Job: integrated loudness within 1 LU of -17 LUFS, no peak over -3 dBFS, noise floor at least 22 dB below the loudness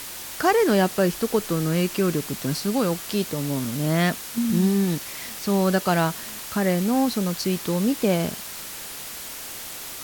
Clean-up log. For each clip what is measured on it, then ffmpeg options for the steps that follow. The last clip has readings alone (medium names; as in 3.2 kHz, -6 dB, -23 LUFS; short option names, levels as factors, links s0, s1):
noise floor -36 dBFS; noise floor target -46 dBFS; loudness -24.0 LUFS; peak level -8.0 dBFS; loudness target -17.0 LUFS
-> -af "afftdn=nr=10:nf=-36"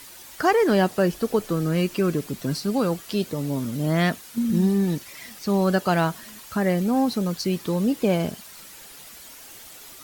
noise floor -44 dBFS; noise floor target -46 dBFS
-> -af "afftdn=nr=6:nf=-44"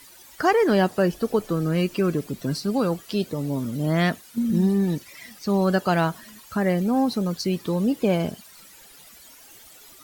noise floor -49 dBFS; loudness -23.5 LUFS; peak level -8.5 dBFS; loudness target -17.0 LUFS
-> -af "volume=2.11,alimiter=limit=0.708:level=0:latency=1"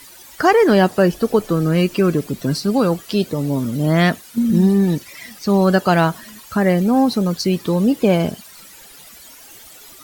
loudness -17.5 LUFS; peak level -3.0 dBFS; noise floor -42 dBFS